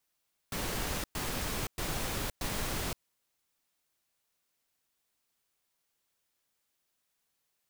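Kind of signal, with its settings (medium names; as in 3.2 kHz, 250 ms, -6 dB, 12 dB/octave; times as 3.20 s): noise bursts pink, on 0.52 s, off 0.11 s, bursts 4, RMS -34.5 dBFS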